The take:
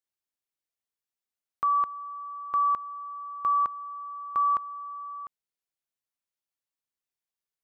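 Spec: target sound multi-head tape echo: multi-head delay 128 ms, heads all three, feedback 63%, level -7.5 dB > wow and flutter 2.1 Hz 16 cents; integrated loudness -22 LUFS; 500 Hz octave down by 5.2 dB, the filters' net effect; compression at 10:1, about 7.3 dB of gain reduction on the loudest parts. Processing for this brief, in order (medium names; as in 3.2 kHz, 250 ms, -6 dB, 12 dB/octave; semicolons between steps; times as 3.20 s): peaking EQ 500 Hz -7 dB; compression 10:1, threshold -30 dBFS; multi-head delay 128 ms, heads all three, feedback 63%, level -7.5 dB; wow and flutter 2.1 Hz 16 cents; trim +15 dB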